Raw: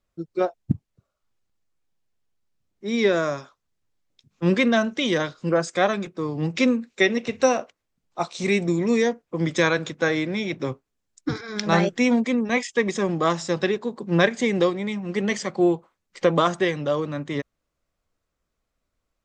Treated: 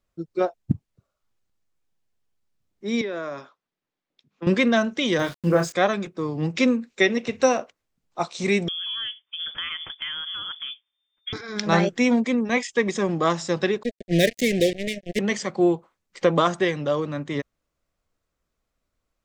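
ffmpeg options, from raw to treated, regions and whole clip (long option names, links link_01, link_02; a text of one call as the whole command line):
ffmpeg -i in.wav -filter_complex "[0:a]asettb=1/sr,asplit=3[link_01][link_02][link_03];[link_01]atrim=end=3.014[link_04];[link_02]atrim=start=3.01:end=4.47,asetpts=PTS-STARTPTS,afade=type=in:duration=0.004:curve=qsin,afade=type=out:start_time=1.456:duration=0.004:curve=qsin,acrossover=split=160 4500:gain=0.0708 1 0.2[link_05][link_06][link_07];[link_05][link_06][link_07]amix=inputs=3:normalize=0,acompressor=threshold=-28dB:ratio=4:attack=3.2:release=140:knee=1:detection=peak[link_08];[link_03]atrim=start=4.466[link_09];[link_04][link_08]acrossfade=duration=0.004:curve1=hsin:curve2=qsin[link_10];[link_10][link_09]acrossfade=duration=0.004:curve1=qsin:curve2=hsin,asettb=1/sr,asplit=3[link_11][link_12][link_13];[link_11]atrim=end=5.194[link_14];[link_12]atrim=start=5.19:end=5.73,asetpts=PTS-STARTPTS,afade=type=in:duration=0.004:curve=qsin,afade=type=out:start_time=0.536:duration=0.004:curve=qsin,lowshelf=frequency=120:gain=9.5,asplit=2[link_15][link_16];[link_16]adelay=29,volume=-6dB[link_17];[link_15][link_17]amix=inputs=2:normalize=0,atrim=end_sample=23814,aeval=exprs='val(0)*gte(abs(val(0)),0.0126)':channel_layout=same[link_18];[link_13]atrim=start=5.726[link_19];[link_14][link_18]acrossfade=duration=0.004:curve1=hsin:curve2=qsin[link_20];[link_20][link_19]acrossfade=duration=0.004:curve1=qsin:curve2=hsin,asettb=1/sr,asplit=3[link_21][link_22][link_23];[link_21]atrim=end=8.684[link_24];[link_22]atrim=start=8.68:end=11.33,asetpts=PTS-STARTPTS,afade=type=in:duration=0.004:curve=qsin,afade=type=out:start_time=2.646:duration=0.004:curve=qsin,lowpass=frequency=3100:width_type=q:width=0.5098,lowpass=frequency=3100:width_type=q:width=0.6013,lowpass=frequency=3100:width_type=q:width=0.9,lowpass=frequency=3100:width_type=q:width=2.563,afreqshift=-3600,acompressor=threshold=-31dB:ratio=3:attack=3.2:release=140:knee=1:detection=peak[link_25];[link_23]atrim=start=11.326[link_26];[link_24][link_25]acrossfade=duration=0.004:curve1=hsin:curve2=qsin[link_27];[link_27][link_26]acrossfade=duration=0.004:curve1=qsin:curve2=hsin,asettb=1/sr,asplit=3[link_28][link_29][link_30];[link_28]atrim=end=13.834[link_31];[link_29]atrim=start=13.83:end=15.19,asetpts=PTS-STARTPTS,afade=type=in:duration=0.004:curve=qsin,afade=type=out:start_time=1.356:duration=0.004:curve=qsin,highshelf=frequency=7200:gain=10,acrusher=bits=3:mix=0:aa=0.5,asuperstop=centerf=1100:order=12:qfactor=1[link_32];[link_30]atrim=start=15.186[link_33];[link_31][link_32]acrossfade=duration=0.004:curve1=hsin:curve2=qsin[link_34];[link_34][link_33]acrossfade=duration=0.004:curve1=qsin:curve2=hsin" out.wav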